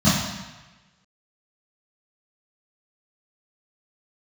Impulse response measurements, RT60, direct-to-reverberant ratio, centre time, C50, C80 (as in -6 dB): 1.1 s, -14.0 dB, 75 ms, 0.5 dB, 4.0 dB